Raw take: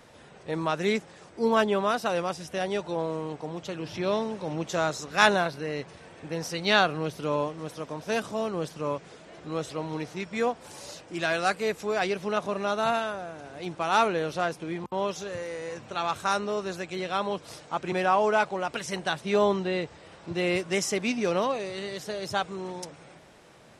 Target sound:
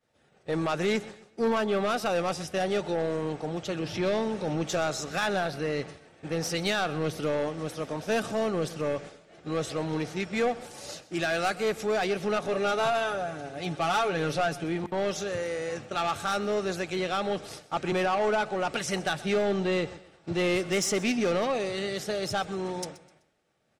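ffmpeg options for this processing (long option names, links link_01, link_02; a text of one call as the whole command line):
ffmpeg -i in.wav -filter_complex "[0:a]agate=range=-33dB:threshold=-39dB:ratio=3:detection=peak,asettb=1/sr,asplit=3[link_01][link_02][link_03];[link_01]atrim=end=12.474[link_04];[link_02]atrim=start=12.47:end=14.64,asetpts=PTS-STARTPTS,afade=type=in:duration=0.004:curve=qsin,afade=type=out:start_time=2.166:duration=0.004:curve=qsin,aecho=1:1:7.1:0.6,atrim=end_sample=95697[link_05];[link_03]atrim=start=14.636[link_06];[link_04][link_05]acrossfade=duration=0.004:curve1=hsin:curve2=qsin[link_07];[link_07][link_06]acrossfade=duration=0.004:curve1=qsin:curve2=hsin,alimiter=limit=-16.5dB:level=0:latency=1:release=221,asoftclip=type=tanh:threshold=-24.5dB,asuperstop=centerf=1000:order=4:qfactor=7.5,aecho=1:1:127|254|381:0.119|0.0392|0.0129,volume=4dB" out.wav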